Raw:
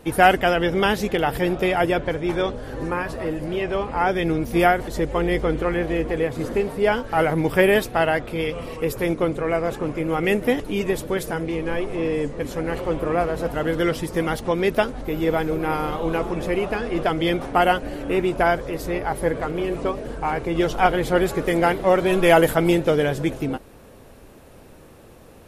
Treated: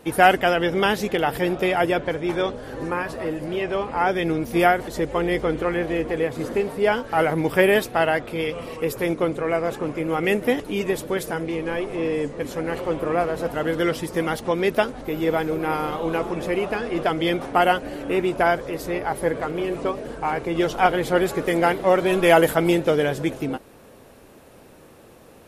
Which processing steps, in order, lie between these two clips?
low shelf 84 Hz -12 dB

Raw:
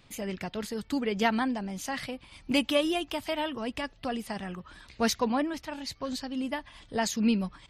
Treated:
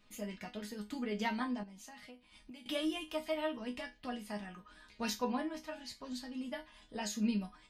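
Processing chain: resonator bank G#3 minor, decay 0.22 s; 1.63–2.66 compressor 12:1, threshold -57 dBFS, peak gain reduction 19 dB; gain +7 dB

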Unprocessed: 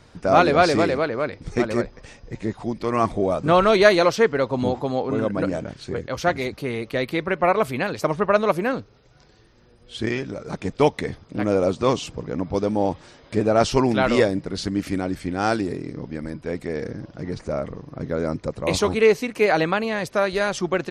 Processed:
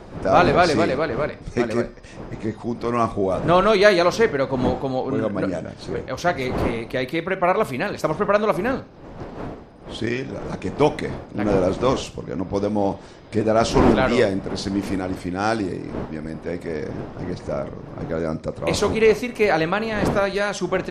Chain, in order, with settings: wind noise 520 Hz -32 dBFS; Schroeder reverb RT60 0.37 s, combs from 30 ms, DRR 14 dB

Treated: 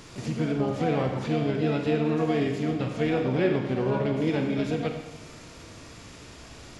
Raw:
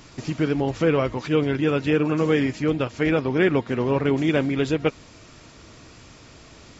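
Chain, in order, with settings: dynamic EQ 120 Hz, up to +3 dB, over -35 dBFS, Q 1.1; harmonic-percussive split harmonic +6 dB; compressor 1.5:1, threshold -32 dBFS, peak gain reduction 8 dB; harmoniser +7 st -7 dB; Schroeder reverb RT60 1.1 s, combs from 31 ms, DRR 3.5 dB; gain -4.5 dB

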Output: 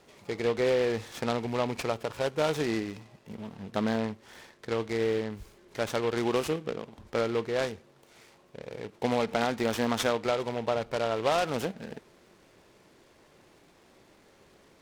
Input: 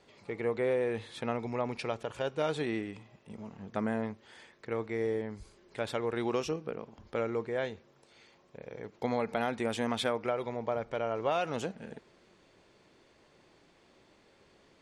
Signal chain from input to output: noise-modulated delay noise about 2100 Hz, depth 0.05 ms; gain +4 dB

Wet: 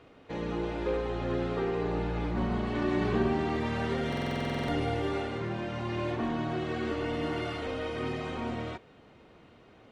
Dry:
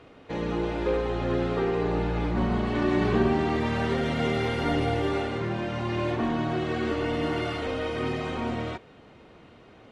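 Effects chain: stuck buffer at 4.08, samples 2048, times 12; gain -4.5 dB

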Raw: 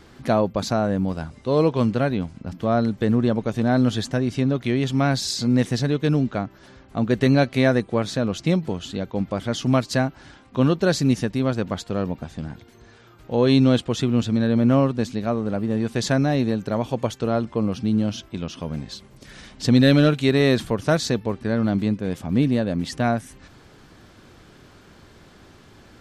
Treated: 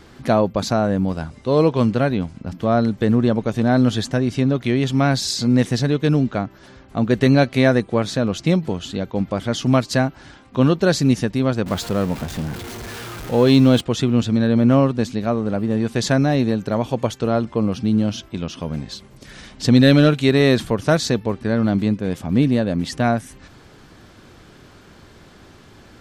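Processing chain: 11.66–13.81 zero-crossing step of -31 dBFS; gain +3 dB

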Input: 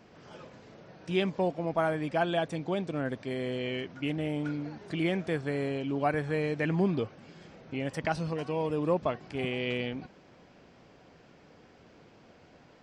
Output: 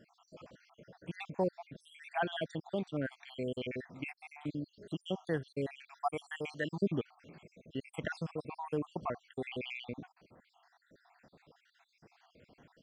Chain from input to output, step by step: random spectral dropouts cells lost 66%; 5.88–6.81 tilt +2.5 dB/oct; gain -2.5 dB

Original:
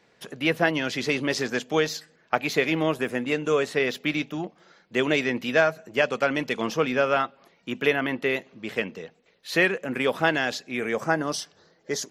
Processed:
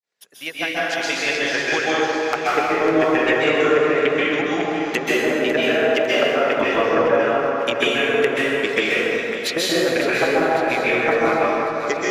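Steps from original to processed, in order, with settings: opening faded in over 3.46 s; RIAA curve recording; notches 50/100/150/200/250/300/350 Hz; treble ducked by the level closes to 750 Hz, closed at -21.5 dBFS; reverb removal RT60 0.51 s; transient shaper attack +9 dB, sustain -4 dB; compressor 6:1, threshold -24 dBFS, peak gain reduction 12 dB; wavefolder -10 dBFS; on a send: split-band echo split 320 Hz, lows 0.381 s, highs 0.551 s, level -10.5 dB; on the sum: plate-style reverb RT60 2.9 s, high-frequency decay 0.5×, pre-delay 0.12 s, DRR -8.5 dB; gain +3.5 dB

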